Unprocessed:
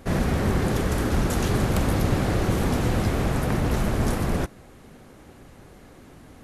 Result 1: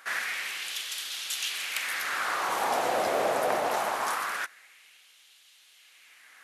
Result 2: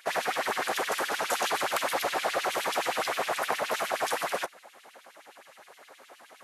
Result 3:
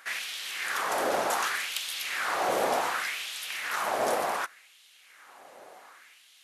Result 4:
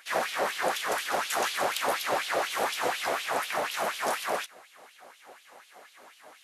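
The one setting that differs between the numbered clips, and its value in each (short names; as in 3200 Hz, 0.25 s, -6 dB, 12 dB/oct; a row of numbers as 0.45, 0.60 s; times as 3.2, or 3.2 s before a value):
LFO high-pass, rate: 0.23, 9.6, 0.67, 4.1 Hz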